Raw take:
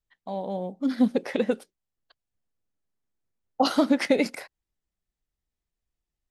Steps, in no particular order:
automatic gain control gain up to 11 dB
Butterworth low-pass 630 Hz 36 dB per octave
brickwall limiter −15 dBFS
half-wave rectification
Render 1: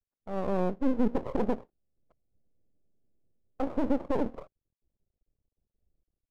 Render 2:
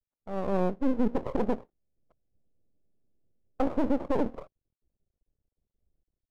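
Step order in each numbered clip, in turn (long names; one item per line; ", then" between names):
automatic gain control, then brickwall limiter, then Butterworth low-pass, then half-wave rectification
Butterworth low-pass, then automatic gain control, then brickwall limiter, then half-wave rectification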